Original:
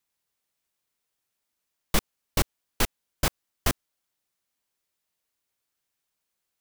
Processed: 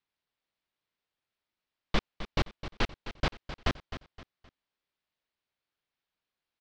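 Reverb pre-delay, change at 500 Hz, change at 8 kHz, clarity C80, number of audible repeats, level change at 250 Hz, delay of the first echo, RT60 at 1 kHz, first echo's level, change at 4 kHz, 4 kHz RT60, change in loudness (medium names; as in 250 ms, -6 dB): no reverb, -2.5 dB, -19.5 dB, no reverb, 3, -2.5 dB, 260 ms, no reverb, -12.0 dB, -4.5 dB, no reverb, -5.0 dB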